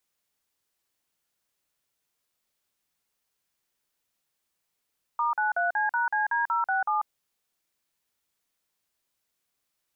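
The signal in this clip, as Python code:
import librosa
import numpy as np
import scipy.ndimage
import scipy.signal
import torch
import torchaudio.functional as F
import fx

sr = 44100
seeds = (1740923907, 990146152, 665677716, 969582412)

y = fx.dtmf(sr, digits='*93C#CD067', tone_ms=142, gap_ms=45, level_db=-25.5)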